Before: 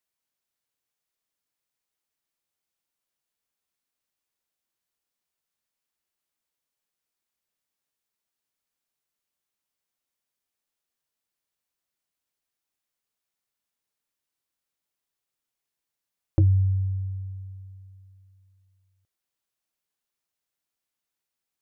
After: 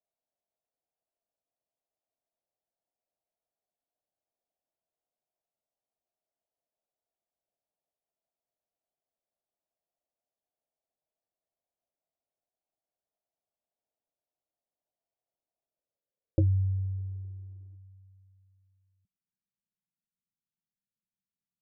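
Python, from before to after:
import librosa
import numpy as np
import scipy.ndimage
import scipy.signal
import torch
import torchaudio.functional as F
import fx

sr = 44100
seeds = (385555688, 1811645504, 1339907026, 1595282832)

y = fx.dmg_crackle(x, sr, seeds[0], per_s=400.0, level_db=-46.0, at=(16.51, 17.75), fade=0.02)
y = fx.filter_sweep_lowpass(y, sr, from_hz=670.0, to_hz=190.0, start_s=15.54, end_s=19.1, q=4.8)
y = y * 10.0 ** (-6.0 / 20.0)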